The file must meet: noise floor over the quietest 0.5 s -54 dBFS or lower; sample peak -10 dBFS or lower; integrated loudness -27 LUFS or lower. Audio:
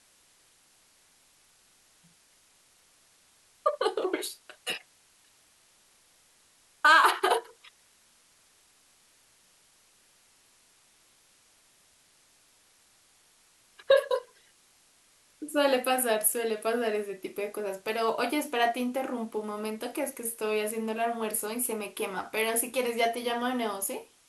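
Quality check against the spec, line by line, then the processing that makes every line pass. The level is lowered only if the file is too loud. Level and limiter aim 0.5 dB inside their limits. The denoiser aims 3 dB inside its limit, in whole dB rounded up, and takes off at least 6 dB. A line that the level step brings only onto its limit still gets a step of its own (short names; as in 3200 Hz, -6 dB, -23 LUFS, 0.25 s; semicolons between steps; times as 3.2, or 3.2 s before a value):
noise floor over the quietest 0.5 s -63 dBFS: OK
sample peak -9.5 dBFS: fail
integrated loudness -28.5 LUFS: OK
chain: limiter -10.5 dBFS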